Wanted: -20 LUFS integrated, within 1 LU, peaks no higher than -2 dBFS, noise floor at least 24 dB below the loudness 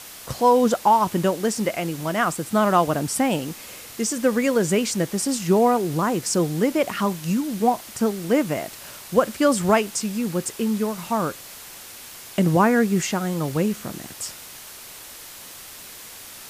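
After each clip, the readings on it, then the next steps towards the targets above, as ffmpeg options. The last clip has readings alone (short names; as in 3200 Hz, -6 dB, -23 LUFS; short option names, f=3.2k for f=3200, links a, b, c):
noise floor -41 dBFS; noise floor target -46 dBFS; loudness -22.0 LUFS; peak -4.5 dBFS; loudness target -20.0 LUFS
-> -af "afftdn=nr=6:nf=-41"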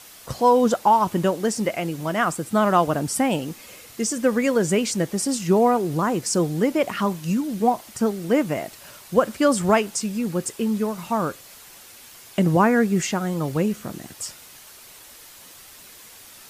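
noise floor -46 dBFS; loudness -22.0 LUFS; peak -4.5 dBFS; loudness target -20.0 LUFS
-> -af "volume=2dB"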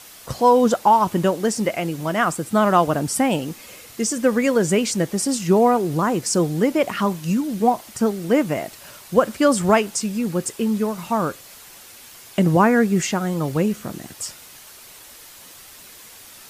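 loudness -20.0 LUFS; peak -2.5 dBFS; noise floor -44 dBFS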